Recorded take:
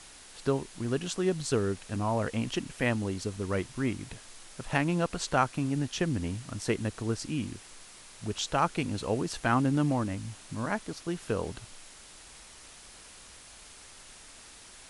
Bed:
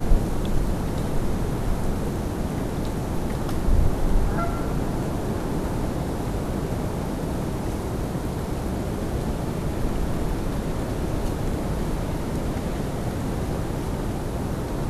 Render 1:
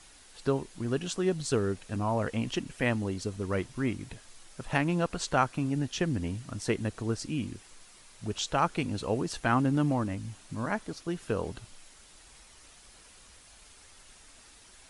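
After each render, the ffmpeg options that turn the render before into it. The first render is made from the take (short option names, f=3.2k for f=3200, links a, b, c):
-af "afftdn=nr=6:nf=-51"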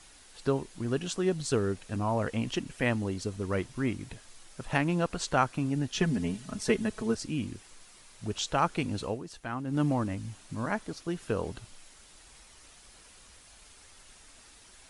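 -filter_complex "[0:a]asettb=1/sr,asplit=3[a][b][c];[a]atrim=end=5.944[d];[b]atrim=start=5.94:end=7.15,asetpts=PTS-STARTPTS,afade=t=in:d=0.004:c=qsin,afade=t=out:st=1.206:d=0.004:c=qsin,aecho=1:1:4.7:0.87,atrim=end_sample=53361[e];[c]atrim=start=7.146[f];[d][e]acrossfade=d=0.004:c1=hsin:c2=qsin[g];[g][f]acrossfade=d=0.004:c1=qsin:c2=hsin,asplit=3[h][i][j];[h]atrim=end=9.19,asetpts=PTS-STARTPTS,afade=t=out:st=9.04:d=0.15:silence=0.316228[k];[i]atrim=start=9.19:end=9.66,asetpts=PTS-STARTPTS,volume=-10dB[l];[j]atrim=start=9.66,asetpts=PTS-STARTPTS,afade=t=in:d=0.15:silence=0.316228[m];[k][l][m]concat=n=3:v=0:a=1"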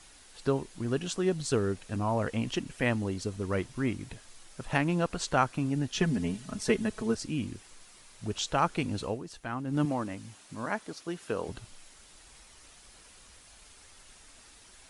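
-filter_complex "[0:a]asettb=1/sr,asplit=3[a][b][c];[a]atrim=end=9.854[d];[b]atrim=start=9.85:end=11.49,asetpts=PTS-STARTPTS,afade=t=in:d=0.004:c=qsin,afade=t=out:st=1.636:d=0.004:c=qsin,highpass=f=280:p=1[e];[c]atrim=start=11.486[f];[d][e]acrossfade=d=0.004:c1=hsin:c2=qsin[g];[g][f]acrossfade=d=0.004:c1=qsin:c2=hsin"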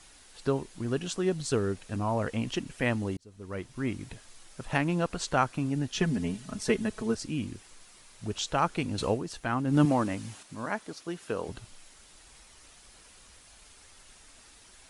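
-filter_complex "[0:a]asettb=1/sr,asplit=3[a][b][c];[a]atrim=end=8.984[d];[b]atrim=start=8.98:end=10.43,asetpts=PTS-STARTPTS,afade=t=in:d=0.004:c=qsin,afade=t=out:st=1.446:d=0.004:c=qsin,acontrast=46[e];[c]atrim=start=10.426[f];[d][e]acrossfade=d=0.004:c1=hsin:c2=qsin[g];[g][f]acrossfade=d=0.004:c1=qsin:c2=hsin,asplit=2[h][i];[h]atrim=end=3.17,asetpts=PTS-STARTPTS,afade=t=out:st=3.166:d=0.004:c=hsin[j];[i]atrim=start=3.17,asetpts=PTS-STARTPTS,afade=t=in:d=0.81[k];[j][k]concat=n=2:v=0:a=1"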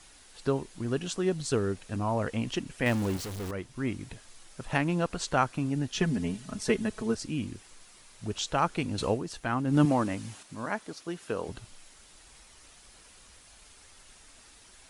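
-filter_complex "[0:a]asettb=1/sr,asplit=3[a][b][c];[a]atrim=end=2.864[d];[b]atrim=start=2.86:end=3.51,asetpts=PTS-STARTPTS,afade=t=in:d=0.004:c=qsin,afade=t=out:st=0.646:d=0.004:c=qsin,aeval=exprs='val(0)+0.5*0.0251*sgn(val(0))':c=same[e];[c]atrim=start=3.506[f];[d][e]acrossfade=d=0.004:c1=hsin:c2=qsin[g];[g][f]acrossfade=d=0.004:c1=qsin:c2=hsin"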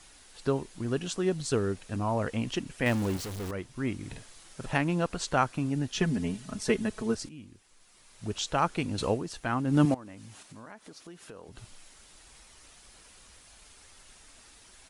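-filter_complex "[0:a]asplit=3[a][b][c];[a]afade=t=out:st=4.03:d=0.02[d];[b]asplit=2[e][f];[f]adelay=49,volume=-3dB[g];[e][g]amix=inputs=2:normalize=0,afade=t=in:st=4.03:d=0.02,afade=t=out:st=4.71:d=0.02[h];[c]afade=t=in:st=4.71:d=0.02[i];[d][h][i]amix=inputs=3:normalize=0,asettb=1/sr,asplit=3[j][k][l];[j]atrim=end=9.944[m];[k]atrim=start=9.94:end=11.58,asetpts=PTS-STARTPTS,afade=t=in:d=0.004:c=qsin,afade=t=out:st=1.636:d=0.004:c=qsin,acompressor=threshold=-45dB:ratio=4:attack=3.2:release=140:knee=1:detection=peak[n];[l]atrim=start=11.576[o];[m][n]acrossfade=d=0.004:c1=hsin:c2=qsin[p];[p][o]acrossfade=d=0.004:c1=qsin:c2=hsin,asplit=2[q][r];[q]atrim=end=7.29,asetpts=PTS-STARTPTS,afade=t=out:st=7.286:d=0.004:c=hsin:silence=0.188365[s];[r]atrim=start=7.29,asetpts=PTS-STARTPTS,afade=t=in:d=0.99:c=qua:silence=0.188365[t];[s][t]concat=n=2:v=0:a=1"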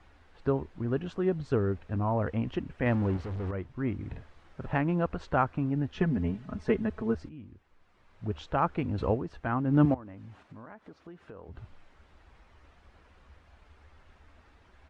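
-af "lowpass=1.7k,equalizer=f=76:t=o:w=0.48:g=13"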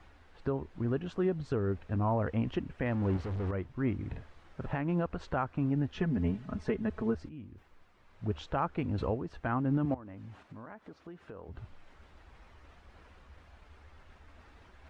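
-af "alimiter=limit=-20.5dB:level=0:latency=1:release=257,areverse,acompressor=mode=upward:threshold=-50dB:ratio=2.5,areverse"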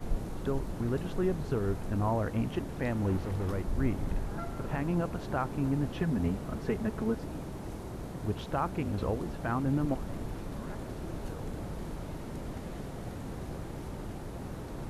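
-filter_complex "[1:a]volume=-13dB[a];[0:a][a]amix=inputs=2:normalize=0"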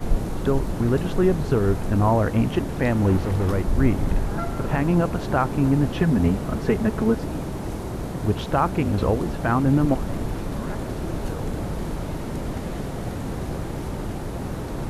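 -af "volume=10.5dB"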